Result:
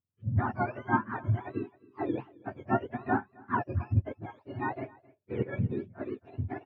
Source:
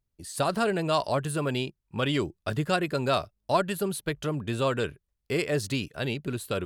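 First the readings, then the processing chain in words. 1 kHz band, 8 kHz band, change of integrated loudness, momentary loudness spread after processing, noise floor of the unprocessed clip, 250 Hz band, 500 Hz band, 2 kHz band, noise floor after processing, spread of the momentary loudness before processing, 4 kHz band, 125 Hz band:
−2.5 dB, below −40 dB, −4.5 dB, 12 LU, −80 dBFS, −3.5 dB, −9.5 dB, −5.0 dB, −71 dBFS, 6 LU, below −25 dB, 0.0 dB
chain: frequency axis turned over on the octave scale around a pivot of 1,000 Hz
transistor ladder low-pass 1,500 Hz, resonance 25%
on a send: single-tap delay 266 ms −17 dB
on the sum: expander for the loud parts 1.5 to 1, over −48 dBFS
level +7.5 dB

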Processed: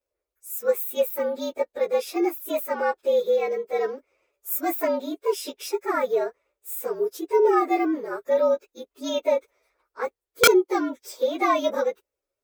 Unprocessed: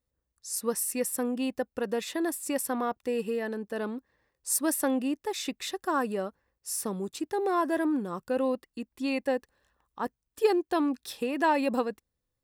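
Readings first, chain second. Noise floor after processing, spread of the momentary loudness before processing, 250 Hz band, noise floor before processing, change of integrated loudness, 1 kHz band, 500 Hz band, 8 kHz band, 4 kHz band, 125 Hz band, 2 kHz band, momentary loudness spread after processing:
below −85 dBFS, 9 LU, +0.5 dB, −84 dBFS, +5.5 dB, +5.0 dB, +8.0 dB, −1.5 dB, +7.5 dB, can't be measured, +6.0 dB, 13 LU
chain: partials spread apart or drawn together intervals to 113%
low shelf with overshoot 280 Hz −13.5 dB, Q 3
wrap-around overflow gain 14 dB
level +5.5 dB

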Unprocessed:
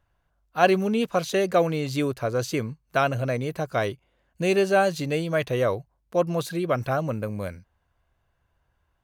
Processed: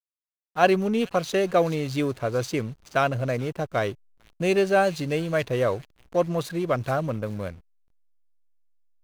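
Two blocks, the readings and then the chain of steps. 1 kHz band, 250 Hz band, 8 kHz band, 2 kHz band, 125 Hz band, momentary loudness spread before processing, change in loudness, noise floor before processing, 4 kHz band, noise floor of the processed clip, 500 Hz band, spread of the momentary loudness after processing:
0.0 dB, 0.0 dB, −1.5 dB, −0.5 dB, 0.0 dB, 9 LU, 0.0 dB, −72 dBFS, −1.0 dB, below −85 dBFS, 0.0 dB, 10 LU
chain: delay with a high-pass on its return 428 ms, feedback 50%, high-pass 4,100 Hz, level −7.5 dB
slack as between gear wheels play −36 dBFS

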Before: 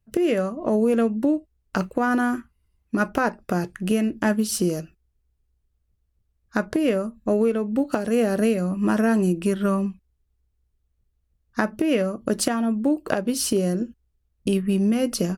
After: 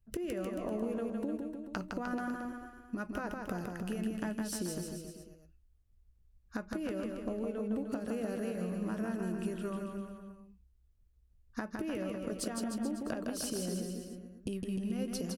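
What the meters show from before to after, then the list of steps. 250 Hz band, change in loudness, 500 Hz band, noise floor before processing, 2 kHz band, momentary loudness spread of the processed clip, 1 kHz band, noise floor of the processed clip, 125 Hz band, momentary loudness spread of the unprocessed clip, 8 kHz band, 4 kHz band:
−14.0 dB, −14.5 dB, −15.0 dB, −72 dBFS, −15.0 dB, 8 LU, −15.0 dB, −66 dBFS, −13.0 dB, 7 LU, −12.0 dB, −13.0 dB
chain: low-shelf EQ 67 Hz +12 dB
downward compressor 6 to 1, threshold −30 dBFS, peak gain reduction 14 dB
on a send: bouncing-ball delay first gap 160 ms, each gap 0.9×, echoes 5
on the sum: level −6 dB

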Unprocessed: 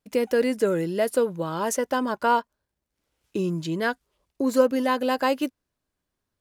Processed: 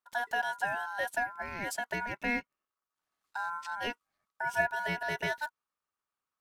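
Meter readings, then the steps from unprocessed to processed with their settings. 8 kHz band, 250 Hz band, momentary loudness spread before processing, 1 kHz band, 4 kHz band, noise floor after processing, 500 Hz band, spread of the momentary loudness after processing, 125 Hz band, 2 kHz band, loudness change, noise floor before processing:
−11.0 dB, −18.0 dB, 7 LU, −7.5 dB, −7.0 dB, below −85 dBFS, −16.0 dB, 7 LU, −13.0 dB, +1.0 dB, −9.0 dB, −83 dBFS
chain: ring modulation 1,200 Hz
level −7.5 dB

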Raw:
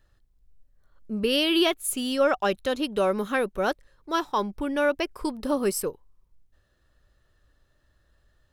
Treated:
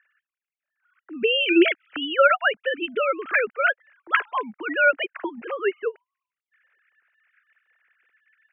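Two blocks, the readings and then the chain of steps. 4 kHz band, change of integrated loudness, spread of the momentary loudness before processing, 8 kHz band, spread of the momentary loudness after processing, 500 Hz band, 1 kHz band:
0.0 dB, +3.5 dB, 8 LU, below −40 dB, 14 LU, +1.5 dB, +4.0 dB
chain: three sine waves on the formant tracks
flat-topped bell 1,900 Hz +14.5 dB 1.3 octaves

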